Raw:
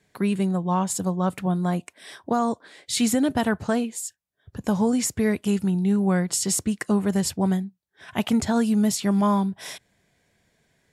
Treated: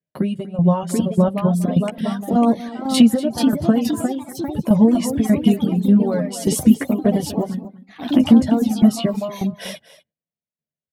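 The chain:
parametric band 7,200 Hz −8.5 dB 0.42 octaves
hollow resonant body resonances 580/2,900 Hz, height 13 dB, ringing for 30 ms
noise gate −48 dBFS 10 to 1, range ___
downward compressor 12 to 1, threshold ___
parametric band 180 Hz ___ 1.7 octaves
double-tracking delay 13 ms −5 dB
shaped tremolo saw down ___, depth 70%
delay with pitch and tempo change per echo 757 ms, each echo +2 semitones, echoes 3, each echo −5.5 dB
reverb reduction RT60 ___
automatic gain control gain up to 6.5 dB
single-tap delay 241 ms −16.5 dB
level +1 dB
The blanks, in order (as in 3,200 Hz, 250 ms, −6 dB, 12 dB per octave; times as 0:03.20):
−34 dB, −25 dBFS, +14 dB, 1.7 Hz, 1.4 s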